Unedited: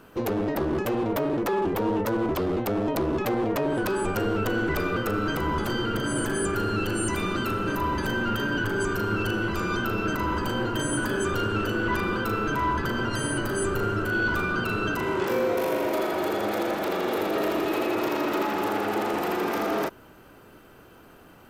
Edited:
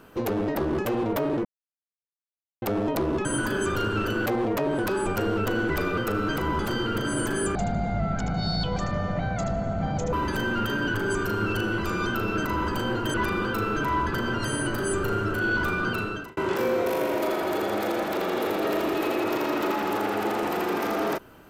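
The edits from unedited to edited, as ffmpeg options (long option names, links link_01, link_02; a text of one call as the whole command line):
ffmpeg -i in.wav -filter_complex "[0:a]asplit=9[link_01][link_02][link_03][link_04][link_05][link_06][link_07][link_08][link_09];[link_01]atrim=end=1.45,asetpts=PTS-STARTPTS,afade=type=out:start_time=1.446:duration=0.004:curve=hsin[link_10];[link_02]atrim=start=1.45:end=2.62,asetpts=PTS-STARTPTS,volume=0[link_11];[link_03]atrim=start=2.62:end=3.252,asetpts=PTS-STARTPTS,afade=type=in:duration=0.004:curve=hsin[link_12];[link_04]atrim=start=10.838:end=11.852[link_13];[link_05]atrim=start=3.248:end=6.544[link_14];[link_06]atrim=start=6.54:end=7.83,asetpts=PTS-STARTPTS,asetrate=22050,aresample=44100[link_15];[link_07]atrim=start=7.826:end=10.842[link_16];[link_08]atrim=start=11.848:end=15.08,asetpts=PTS-STARTPTS,afade=type=out:start_time=2.802:duration=0.43[link_17];[link_09]atrim=start=15.08,asetpts=PTS-STARTPTS,afade=type=in:duration=0.004:curve=hsin[link_18];[link_10][link_11][link_12]concat=n=3:v=0:a=1[link_19];[link_19][link_13]acrossfade=duration=0.004:curve1=hsin:curve2=hsin[link_20];[link_20][link_14]acrossfade=duration=0.004:curve1=hsin:curve2=hsin[link_21];[link_21][link_15]acrossfade=duration=0.004:curve1=hsin:curve2=hsin[link_22];[link_22][link_16]acrossfade=duration=0.004:curve1=hsin:curve2=hsin[link_23];[link_17][link_18]concat=n=2:v=0:a=1[link_24];[link_23][link_24]acrossfade=duration=0.004:curve1=hsin:curve2=hsin" out.wav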